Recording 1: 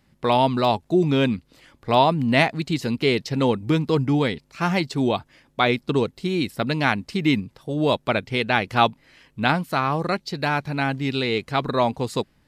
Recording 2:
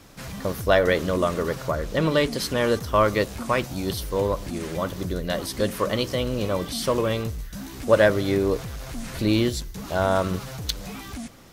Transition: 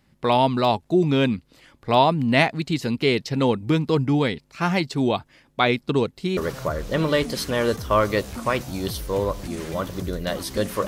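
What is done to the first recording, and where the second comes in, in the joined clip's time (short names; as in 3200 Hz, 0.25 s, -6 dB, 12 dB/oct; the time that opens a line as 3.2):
recording 1
6.37 switch to recording 2 from 1.4 s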